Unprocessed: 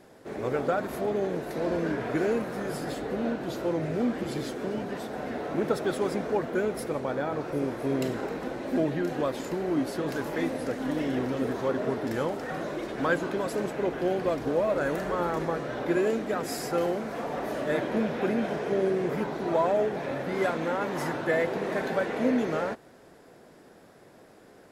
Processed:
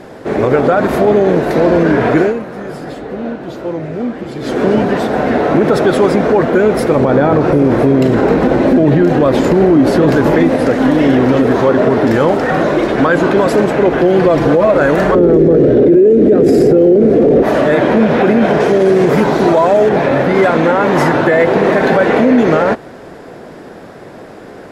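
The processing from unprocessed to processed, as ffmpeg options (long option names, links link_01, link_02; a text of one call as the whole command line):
ffmpeg -i in.wav -filter_complex "[0:a]asettb=1/sr,asplit=3[link_01][link_02][link_03];[link_01]atrim=end=6.964[link_04];[link_02]atrim=start=6.96:end=10.5,asetpts=PTS-STARTPTS,afade=type=in:duration=0.004:curve=qsin,afade=type=out:start_time=3.536:duration=0.004:curve=qsin,lowshelf=frequency=460:gain=6.5[link_05];[link_03]atrim=start=10.496[link_06];[link_04][link_05]acrossfade=duration=0.004:curve1=hsin:curve2=qsin[link_07];[link_07][link_06]acrossfade=duration=0.004:curve1=qsin:curve2=hsin,asettb=1/sr,asplit=3[link_08][link_09][link_10];[link_08]atrim=end=14.024[link_11];[link_09]atrim=start=14.02:end=14.65,asetpts=PTS-STARTPTS,afade=type=in:duration=0.004:curve=qsin,afade=type=out:start_time=0.626:duration=0.004:curve=qsin,aecho=1:1:5.9:0.71,atrim=end_sample=27783[link_12];[link_10]atrim=start=14.646[link_13];[link_11][link_12]acrossfade=duration=0.004:curve1=hsin:curve2=qsin[link_14];[link_14][link_13]acrossfade=duration=0.004:curve1=qsin:curve2=hsin,asettb=1/sr,asplit=3[link_15][link_16][link_17];[link_15]atrim=end=15.154[link_18];[link_16]atrim=start=15.15:end=17.43,asetpts=PTS-STARTPTS,afade=type=in:duration=0.004:curve=qsin,afade=type=out:start_time=2.276:duration=0.004:curve=qsin,lowshelf=frequency=620:width_type=q:width=3:gain=14[link_19];[link_17]atrim=start=17.426[link_20];[link_18][link_19]acrossfade=duration=0.004:curve1=hsin:curve2=qsin[link_21];[link_21][link_20]acrossfade=duration=0.004:curve1=qsin:curve2=hsin,asettb=1/sr,asplit=3[link_22][link_23][link_24];[link_22]atrim=end=18.604[link_25];[link_23]atrim=start=18.6:end=19.89,asetpts=PTS-STARTPTS,afade=type=in:duration=0.004:curve=qsin,afade=type=out:start_time=1.286:duration=0.004:curve=qsin,bass=frequency=250:gain=0,treble=frequency=4000:gain=9[link_26];[link_24]atrim=start=19.886[link_27];[link_25][link_26]acrossfade=duration=0.004:curve1=hsin:curve2=qsin[link_28];[link_28][link_27]acrossfade=duration=0.004:curve1=qsin:curve2=hsin,asplit=3[link_29][link_30][link_31];[link_29]atrim=end=2.33,asetpts=PTS-STARTPTS,afade=type=out:start_time=2.15:duration=0.18:silence=0.223872[link_32];[link_30]atrim=start=2.33:end=4.4,asetpts=PTS-STARTPTS,volume=-13dB[link_33];[link_31]atrim=start=4.4,asetpts=PTS-STARTPTS,afade=type=in:duration=0.18:silence=0.223872[link_34];[link_32][link_33][link_34]concat=n=3:v=0:a=1,lowpass=frequency=3000:poles=1,alimiter=level_in=22dB:limit=-1dB:release=50:level=0:latency=1,volume=-1dB" out.wav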